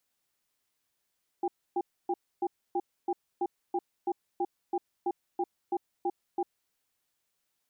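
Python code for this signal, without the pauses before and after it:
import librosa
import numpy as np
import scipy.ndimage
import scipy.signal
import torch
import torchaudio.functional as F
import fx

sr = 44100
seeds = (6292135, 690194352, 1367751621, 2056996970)

y = fx.cadence(sr, length_s=5.07, low_hz=354.0, high_hz=798.0, on_s=0.05, off_s=0.28, level_db=-29.0)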